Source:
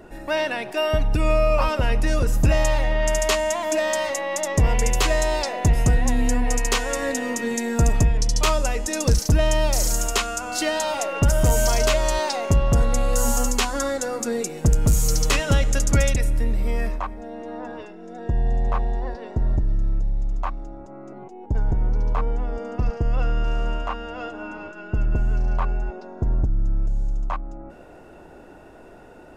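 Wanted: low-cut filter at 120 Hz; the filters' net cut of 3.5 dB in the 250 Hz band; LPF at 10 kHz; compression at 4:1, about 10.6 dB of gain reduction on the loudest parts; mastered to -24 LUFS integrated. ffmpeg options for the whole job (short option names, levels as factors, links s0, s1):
-af "highpass=120,lowpass=10000,equalizer=f=250:t=o:g=-4,acompressor=threshold=0.0282:ratio=4,volume=3.16"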